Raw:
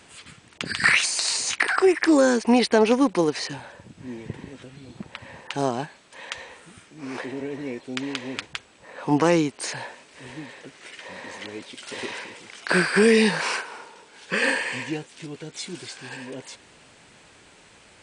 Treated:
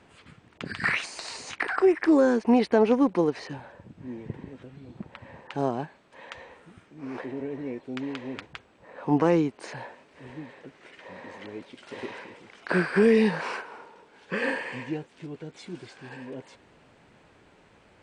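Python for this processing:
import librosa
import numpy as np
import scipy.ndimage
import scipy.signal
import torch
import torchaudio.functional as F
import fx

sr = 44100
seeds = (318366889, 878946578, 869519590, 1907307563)

y = fx.lowpass(x, sr, hz=1100.0, slope=6)
y = y * librosa.db_to_amplitude(-1.5)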